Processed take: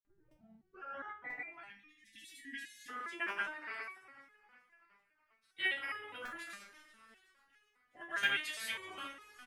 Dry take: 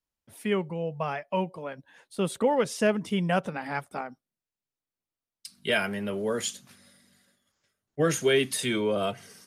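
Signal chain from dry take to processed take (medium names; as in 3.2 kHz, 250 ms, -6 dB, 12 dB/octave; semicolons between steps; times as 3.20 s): tape start-up on the opening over 1.67 s; spectral gate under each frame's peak -10 dB weak; granulator, pitch spread up and down by 0 st; frequency-shifting echo 380 ms, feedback 60%, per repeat -45 Hz, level -20 dB; on a send at -16 dB: reverberation RT60 1.6 s, pre-delay 3 ms; on the sum: spectral selection erased 1.64–2.89 s, 340–1600 Hz; peaking EQ 1.7 kHz +13.5 dB 1.7 oct; de-hum 81.61 Hz, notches 37; crackling interface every 0.99 s, samples 128, repeat, from 0.31 s; resonator arpeggio 4.9 Hz 200–420 Hz; trim +2 dB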